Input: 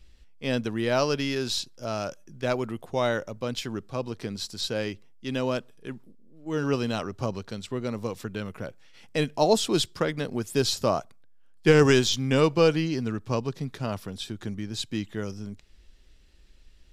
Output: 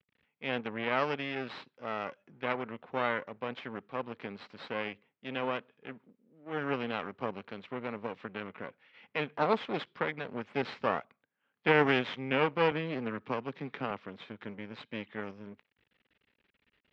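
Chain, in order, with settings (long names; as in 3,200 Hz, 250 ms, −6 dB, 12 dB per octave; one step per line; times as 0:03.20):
half-wave rectification
loudspeaker in its box 250–2,900 Hz, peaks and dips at 340 Hz −8 dB, 650 Hz −5 dB, 2,200 Hz +3 dB
0:12.71–0:13.91: multiband upward and downward compressor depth 70%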